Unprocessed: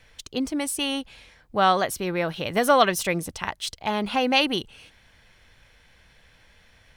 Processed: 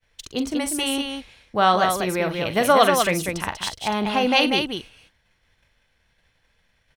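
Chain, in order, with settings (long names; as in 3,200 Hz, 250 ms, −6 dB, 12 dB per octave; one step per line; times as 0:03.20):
downward expander −46 dBFS
loudspeakers that aren't time-aligned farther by 15 metres −11 dB, 66 metres −5 dB
level +1.5 dB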